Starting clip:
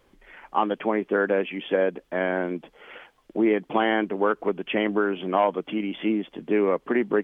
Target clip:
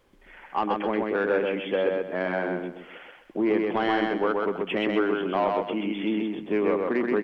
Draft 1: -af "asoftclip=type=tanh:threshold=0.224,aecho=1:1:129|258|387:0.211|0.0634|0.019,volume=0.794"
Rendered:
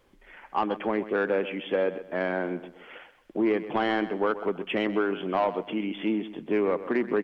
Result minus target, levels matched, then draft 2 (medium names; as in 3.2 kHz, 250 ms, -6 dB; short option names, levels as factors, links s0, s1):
echo-to-direct -11 dB
-af "asoftclip=type=tanh:threshold=0.224,aecho=1:1:129|258|387|516:0.75|0.225|0.0675|0.0202,volume=0.794"